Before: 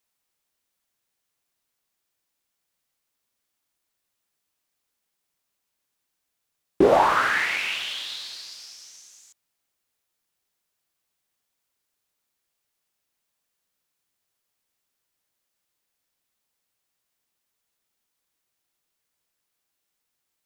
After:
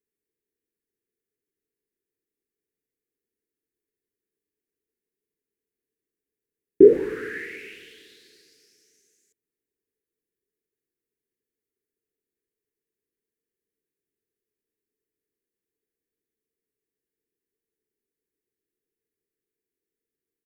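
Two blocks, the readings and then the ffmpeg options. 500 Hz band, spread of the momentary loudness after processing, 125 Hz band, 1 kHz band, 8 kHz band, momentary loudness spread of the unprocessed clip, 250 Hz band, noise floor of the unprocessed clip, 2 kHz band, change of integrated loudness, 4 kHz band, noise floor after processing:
+5.0 dB, 19 LU, -4.0 dB, under -25 dB, under -15 dB, 21 LU, +4.0 dB, -80 dBFS, -12.0 dB, +3.5 dB, under -20 dB, under -85 dBFS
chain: -af "firequalizer=gain_entry='entry(150,0);entry(440,15);entry(640,-30);entry(1100,-27);entry(1700,-4);entry(3300,-17);entry(11000,-7)':delay=0.05:min_phase=1,volume=0.562"

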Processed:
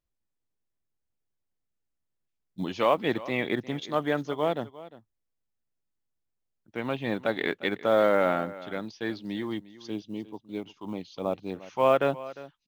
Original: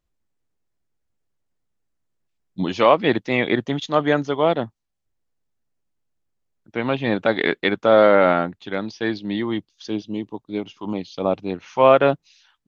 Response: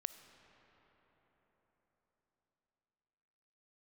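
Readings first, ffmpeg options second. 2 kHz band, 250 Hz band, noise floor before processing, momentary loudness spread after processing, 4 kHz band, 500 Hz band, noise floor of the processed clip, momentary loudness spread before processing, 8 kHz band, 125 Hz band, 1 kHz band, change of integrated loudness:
-8.5 dB, -8.5 dB, -76 dBFS, 15 LU, -8.5 dB, -8.5 dB, -81 dBFS, 15 LU, no reading, -8.5 dB, -8.5 dB, -8.5 dB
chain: -af "acrusher=bits=9:mode=log:mix=0:aa=0.000001,aecho=1:1:353:0.133,volume=0.376"

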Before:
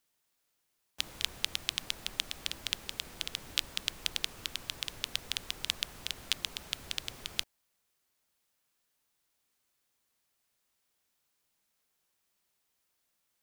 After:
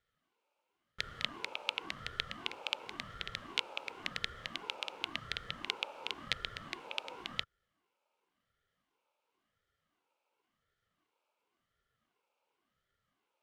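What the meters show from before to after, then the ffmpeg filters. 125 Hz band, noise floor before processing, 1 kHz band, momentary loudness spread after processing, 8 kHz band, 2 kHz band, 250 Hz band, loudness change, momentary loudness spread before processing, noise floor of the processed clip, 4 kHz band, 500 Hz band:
-1.0 dB, -79 dBFS, +5.0 dB, 5 LU, -15.0 dB, +1.0 dB, +1.0 dB, -4.0 dB, 5 LU, -85 dBFS, -5.0 dB, +4.0 dB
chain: -filter_complex "[0:a]asplit=3[s0][s1][s2];[s0]bandpass=f=730:t=q:w=8,volume=1[s3];[s1]bandpass=f=1090:t=q:w=8,volume=0.501[s4];[s2]bandpass=f=2440:t=q:w=8,volume=0.355[s5];[s3][s4][s5]amix=inputs=3:normalize=0,lowshelf=f=330:t=q:w=1.5:g=-10,aeval=exprs='val(0)*sin(2*PI*410*n/s+410*0.65/0.93*sin(2*PI*0.93*n/s))':c=same,volume=6.31"

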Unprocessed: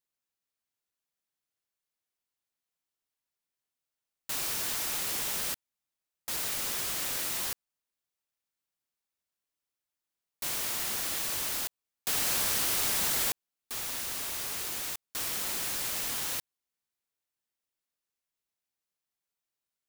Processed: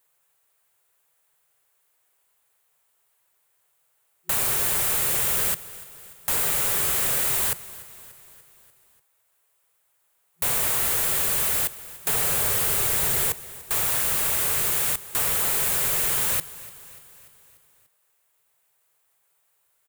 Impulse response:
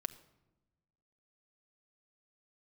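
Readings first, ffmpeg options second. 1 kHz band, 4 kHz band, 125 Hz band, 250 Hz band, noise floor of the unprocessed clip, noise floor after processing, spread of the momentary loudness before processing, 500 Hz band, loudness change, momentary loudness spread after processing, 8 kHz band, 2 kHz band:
+8.0 dB, +3.0 dB, +13.0 dB, +6.0 dB, under -85 dBFS, -69 dBFS, 10 LU, +10.0 dB, +9.0 dB, 10 LU, +7.5 dB, +7.0 dB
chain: -filter_complex "[0:a]afftfilt=real='re*(1-between(b*sr/4096,170,360))':imag='im*(1-between(b*sr/4096,170,360))':win_size=4096:overlap=0.75,adynamicequalizer=threshold=0.00178:dfrequency=830:dqfactor=1.2:tfrequency=830:tqfactor=1.2:attack=5:release=100:ratio=0.375:range=2.5:mode=cutabove:tftype=bell,acrossover=split=430[s0][s1];[s1]acompressor=threshold=0.0158:ratio=6[s2];[s0][s2]amix=inputs=2:normalize=0,asplit=2[s3][s4];[s4]highpass=f=720:p=1,volume=17.8,asoftclip=type=tanh:threshold=0.168[s5];[s3][s5]amix=inputs=2:normalize=0,lowpass=f=1200:p=1,volume=0.501,acrossover=split=190[s6][s7];[s6]acontrast=83[s8];[s8][s7]amix=inputs=2:normalize=0,aexciter=amount=2.2:drive=9.8:freq=7400,asplit=2[s9][s10];[s10]aecho=0:1:293|586|879|1172|1465:0.119|0.0689|0.04|0.0232|0.0134[s11];[s9][s11]amix=inputs=2:normalize=0,volume=1.88"

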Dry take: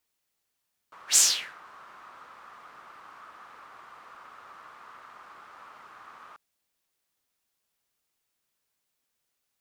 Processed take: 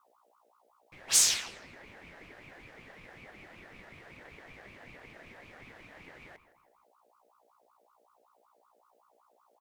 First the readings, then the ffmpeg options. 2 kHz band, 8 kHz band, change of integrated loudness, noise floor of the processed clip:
-1.0 dB, -3.0 dB, -3.5 dB, -69 dBFS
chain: -filter_complex "[0:a]asplit=2[s0][s1];[s1]adelay=162,lowpass=f=3100:p=1,volume=0.178,asplit=2[s2][s3];[s3]adelay=162,lowpass=f=3100:p=1,volume=0.38,asplit=2[s4][s5];[s5]adelay=162,lowpass=f=3100:p=1,volume=0.38[s6];[s0][s2][s4][s6]amix=inputs=4:normalize=0,aeval=exprs='val(0)+0.000631*(sin(2*PI*60*n/s)+sin(2*PI*2*60*n/s)/2+sin(2*PI*3*60*n/s)/3+sin(2*PI*4*60*n/s)/4+sin(2*PI*5*60*n/s)/5)':c=same,aeval=exprs='val(0)*sin(2*PI*850*n/s+850*0.4/5.3*sin(2*PI*5.3*n/s))':c=same"

